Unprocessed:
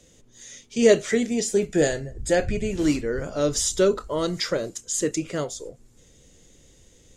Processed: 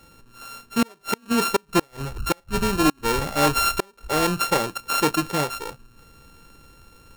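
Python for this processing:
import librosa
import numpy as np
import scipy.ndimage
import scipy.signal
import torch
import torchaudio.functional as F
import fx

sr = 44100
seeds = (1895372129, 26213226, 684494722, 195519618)

y = np.r_[np.sort(x[:len(x) // 32 * 32].reshape(-1, 32), axis=1).ravel(), x[len(x) // 32 * 32:]]
y = fx.gate_flip(y, sr, shuts_db=-12.0, range_db=-37)
y = 10.0 ** (-15.5 / 20.0) * (np.abs((y / 10.0 ** (-15.5 / 20.0) + 3.0) % 4.0 - 2.0) - 1.0)
y = y * 10.0 ** (4.0 / 20.0)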